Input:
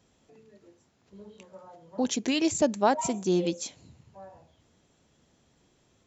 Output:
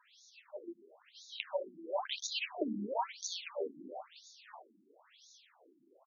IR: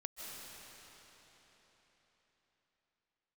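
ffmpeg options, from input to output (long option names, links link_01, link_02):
-filter_complex "[0:a]bass=frequency=250:gain=-15,treble=frequency=4000:gain=6,bandreject=frequency=60:width_type=h:width=6,bandreject=frequency=120:width_type=h:width=6,bandreject=frequency=180:width_type=h:width=6,bandreject=frequency=240:width_type=h:width=6,bandreject=frequency=300:width_type=h:width=6,bandreject=frequency=360:width_type=h:width=6,acrossover=split=890|2500[link_01][link_02][link_03];[link_01]acompressor=threshold=-36dB:ratio=4[link_04];[link_02]acompressor=threshold=-39dB:ratio=4[link_05];[link_03]acompressor=threshold=-45dB:ratio=4[link_06];[link_04][link_05][link_06]amix=inputs=3:normalize=0,asplit=2[link_07][link_08];[link_08]asplit=6[link_09][link_10][link_11][link_12][link_13][link_14];[link_09]adelay=129,afreqshift=60,volume=-8dB[link_15];[link_10]adelay=258,afreqshift=120,volume=-13.4dB[link_16];[link_11]adelay=387,afreqshift=180,volume=-18.7dB[link_17];[link_12]adelay=516,afreqshift=240,volume=-24.1dB[link_18];[link_13]adelay=645,afreqshift=300,volume=-29.4dB[link_19];[link_14]adelay=774,afreqshift=360,volume=-34.8dB[link_20];[link_15][link_16][link_17][link_18][link_19][link_20]amix=inputs=6:normalize=0[link_21];[link_07][link_21]amix=inputs=2:normalize=0,agate=range=-7dB:threshold=-57dB:ratio=16:detection=peak,acrossover=split=230[link_22][link_23];[link_23]acompressor=threshold=-47dB:ratio=6[link_24];[link_22][link_24]amix=inputs=2:normalize=0,afftfilt=real='re*between(b*sr/1024,240*pow(5000/240,0.5+0.5*sin(2*PI*0.99*pts/sr))/1.41,240*pow(5000/240,0.5+0.5*sin(2*PI*0.99*pts/sr))*1.41)':imag='im*between(b*sr/1024,240*pow(5000/240,0.5+0.5*sin(2*PI*0.99*pts/sr))/1.41,240*pow(5000/240,0.5+0.5*sin(2*PI*0.99*pts/sr))*1.41)':win_size=1024:overlap=0.75,volume=17.5dB"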